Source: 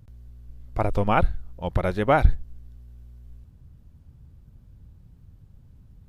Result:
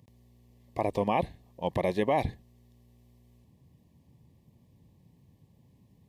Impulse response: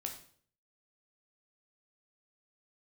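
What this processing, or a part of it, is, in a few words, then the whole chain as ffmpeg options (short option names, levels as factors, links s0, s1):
PA system with an anti-feedback notch: -af "highpass=180,asuperstop=centerf=1400:order=8:qfactor=2.5,alimiter=limit=0.178:level=0:latency=1:release=28"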